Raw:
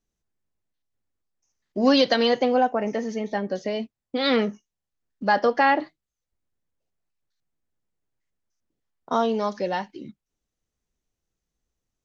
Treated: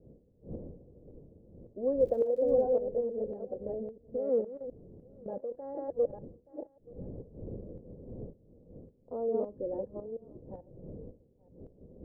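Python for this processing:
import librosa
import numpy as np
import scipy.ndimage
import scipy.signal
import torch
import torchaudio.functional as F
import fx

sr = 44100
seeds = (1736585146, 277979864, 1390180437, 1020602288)

y = fx.reverse_delay(x, sr, ms=442, wet_db=-3.0)
y = fx.dmg_wind(y, sr, seeds[0], corner_hz=200.0, level_db=-33.0)
y = fx.ladder_lowpass(y, sr, hz=550.0, resonance_pct=70)
y = fx.dmg_crackle(y, sr, seeds[1], per_s=110.0, level_db=-46.0, at=(1.98, 2.6), fade=0.02)
y = fx.level_steps(y, sr, step_db=16, at=(4.41, 5.76))
y = fx.peak_eq(y, sr, hz=290.0, db=8.0, octaves=0.81, at=(9.34, 9.81))
y = y + 10.0 ** (-23.0 / 20.0) * np.pad(y, (int(877 * sr / 1000.0), 0))[:len(y)]
y = fx.dynamic_eq(y, sr, hz=140.0, q=0.76, threshold_db=-34.0, ratio=4.0, max_db=-4)
y = fx.tremolo_shape(y, sr, shape='saw_up', hz=1.8, depth_pct=65)
y = y * 10.0 ** (-2.5 / 20.0)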